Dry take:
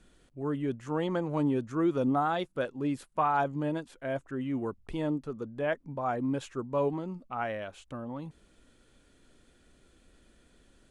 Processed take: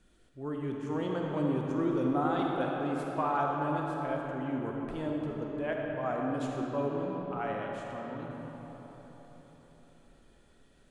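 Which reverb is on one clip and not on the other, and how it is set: digital reverb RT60 4.6 s, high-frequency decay 0.55×, pre-delay 10 ms, DRR -1.5 dB; gain -5 dB

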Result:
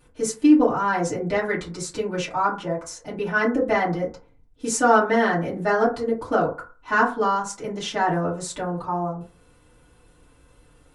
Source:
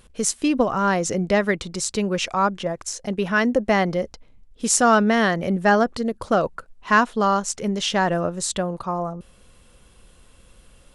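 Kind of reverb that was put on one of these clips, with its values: FDN reverb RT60 0.36 s, low-frequency decay 0.95×, high-frequency decay 0.35×, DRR -9.5 dB; gain -11.5 dB

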